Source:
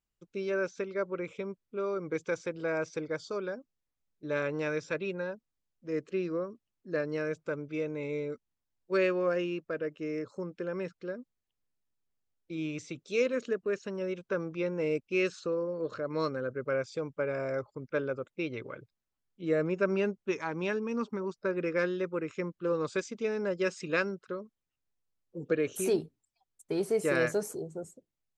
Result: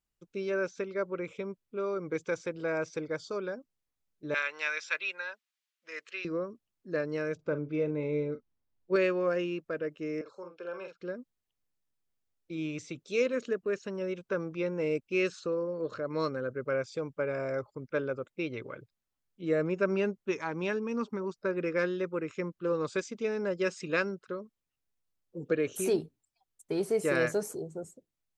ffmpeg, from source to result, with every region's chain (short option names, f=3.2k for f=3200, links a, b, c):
-filter_complex "[0:a]asettb=1/sr,asplit=3[a][b][c];[a]atrim=end=4.344[d];[b]atrim=start=4.34:end=6.25,asetpts=PTS-STARTPTS,afade=t=in:d=0.004:c=qsin,afade=t=out:st=1.906:d=0.004:c=qsin,highpass=1.1k,equalizer=f=2.7k:t=o:w=2.3:g=9[e];[c]atrim=start=6.246[f];[d][e]acrossfade=d=0.004:c1=hsin:c2=qsin[g];[g][f]acrossfade=d=0.004:c1=qsin:c2=hsin,asettb=1/sr,asplit=3[h][i][j];[h]atrim=end=7.354[k];[i]atrim=start=7.35:end=8.96,asetpts=PTS-STARTPTS,afade=t=in:d=0.004:c=qsin,afade=t=out:st=1.606:d=0.004:c=qsin,lowpass=f=5.6k:w=0.5412,lowpass=f=5.6k:w=1.3066,tiltshelf=f=1.1k:g=4.5,asplit=2[l][m];[m]adelay=40,volume=-12.5dB[n];[l][n]amix=inputs=2:normalize=0,atrim=end_sample=71001[o];[j]atrim=start=8.956[p];[k][o]acrossfade=d=0.004:c1=hsin:c2=qsin[q];[q][p]acrossfade=d=0.004:c1=qsin:c2=hsin,asettb=1/sr,asplit=3[r][s][t];[r]atrim=end=10.214[u];[s]atrim=start=10.21:end=11.01,asetpts=PTS-STARTPTS,afade=t=in:d=0.004:c=qsin,afade=t=out:st=0.796:d=0.004:c=qsin,asuperstop=centerf=1900:order=4:qfactor=3.7,acrossover=split=470 5200:gain=0.0891 1 0.251[v][w][x];[v][w][x]amix=inputs=3:normalize=0,asplit=2[y][z];[z]adelay=46,volume=-6.5dB[aa];[y][aa]amix=inputs=2:normalize=0,atrim=end_sample=35280[ab];[t]atrim=start=11.006[ac];[u][ab]acrossfade=d=0.004:c1=hsin:c2=qsin[ad];[ad][ac]acrossfade=d=0.004:c1=qsin:c2=hsin"